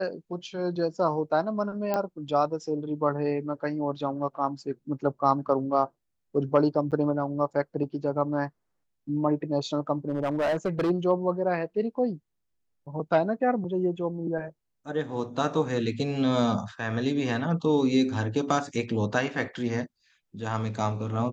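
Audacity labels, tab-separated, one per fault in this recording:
1.940000	1.940000	pop -14 dBFS
6.910000	6.920000	dropout 8.3 ms
10.080000	10.910000	clipped -22 dBFS

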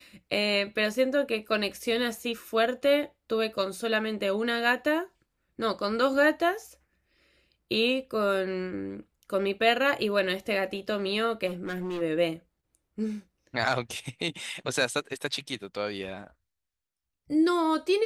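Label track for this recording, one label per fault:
11.460000	12.020000	clipped -29 dBFS

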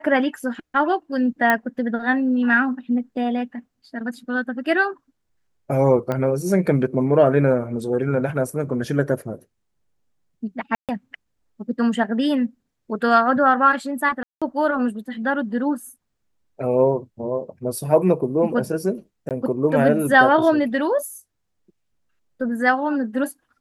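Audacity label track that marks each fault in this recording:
1.500000	1.500000	pop -6 dBFS
6.120000	6.120000	pop -13 dBFS
10.750000	10.890000	dropout 137 ms
14.230000	14.420000	dropout 186 ms
19.290000	19.310000	dropout 18 ms

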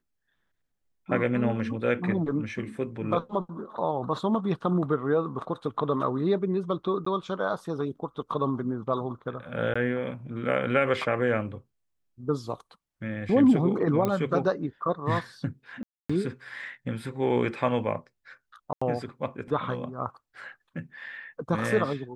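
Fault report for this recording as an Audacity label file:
7.050000	7.060000	dropout 14 ms
9.740000	9.760000	dropout 15 ms
14.050000	14.050000	pop -14 dBFS
15.830000	16.090000	dropout 265 ms
18.730000	18.820000	dropout 85 ms

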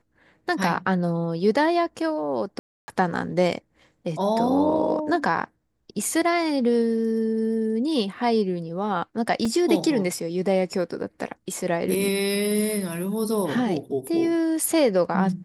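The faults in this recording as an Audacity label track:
2.590000	2.880000	dropout 290 ms
9.450000	9.450000	dropout 3.7 ms

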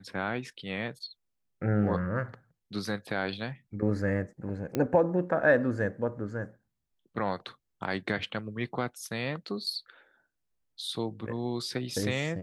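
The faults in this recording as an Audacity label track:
4.750000	4.750000	pop -16 dBFS

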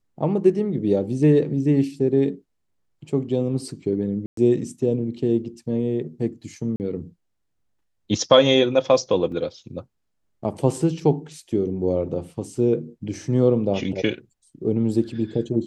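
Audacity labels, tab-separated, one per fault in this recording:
4.260000	4.370000	dropout 113 ms
6.760000	6.800000	dropout 39 ms
9.320000	9.320000	dropout 2.6 ms

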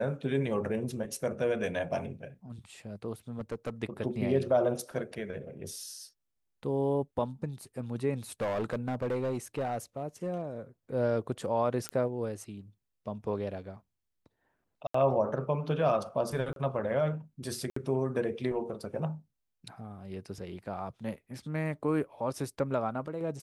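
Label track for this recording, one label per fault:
3.390000	3.700000	clipped -30 dBFS
8.410000	10.420000	clipped -27.5 dBFS
11.890000	11.890000	pop -18 dBFS
14.870000	14.940000	dropout 74 ms
16.530000	16.560000	dropout 32 ms
17.700000	17.760000	dropout 64 ms

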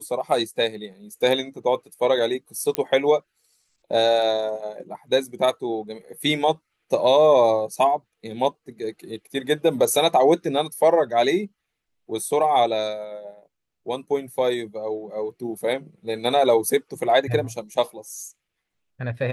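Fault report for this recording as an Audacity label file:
2.750000	2.750000	pop -7 dBFS

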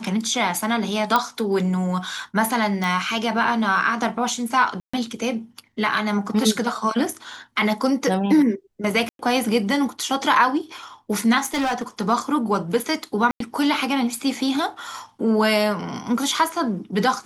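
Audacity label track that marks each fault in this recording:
1.160000	1.160000	pop -5 dBFS
2.840000	2.840000	pop
4.800000	4.930000	dropout 135 ms
9.090000	9.190000	dropout 102 ms
11.380000	11.820000	clipped -19 dBFS
13.310000	13.400000	dropout 93 ms

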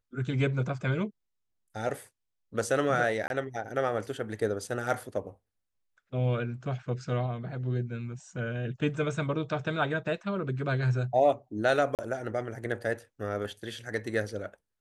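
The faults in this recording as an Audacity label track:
3.280000	3.300000	dropout 21 ms
11.950000	11.990000	dropout 38 ms

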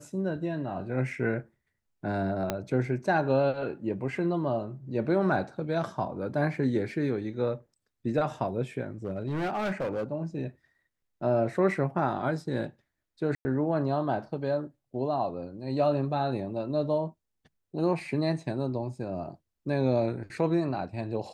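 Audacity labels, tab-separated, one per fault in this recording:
2.500000	2.500000	pop -13 dBFS
8.840000	10.110000	clipped -26.5 dBFS
13.350000	13.450000	dropout 100 ms

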